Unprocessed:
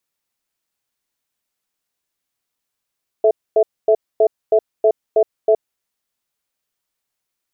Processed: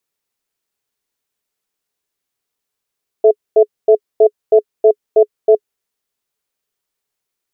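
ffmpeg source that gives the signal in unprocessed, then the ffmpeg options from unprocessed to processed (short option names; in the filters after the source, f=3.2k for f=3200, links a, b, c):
-f lavfi -i "aevalsrc='0.251*(sin(2*PI*435*t)+sin(2*PI*657*t))*clip(min(mod(t,0.32),0.07-mod(t,0.32))/0.005,0,1)':d=2.35:s=44100"
-af "equalizer=f=420:t=o:w=0.26:g=8"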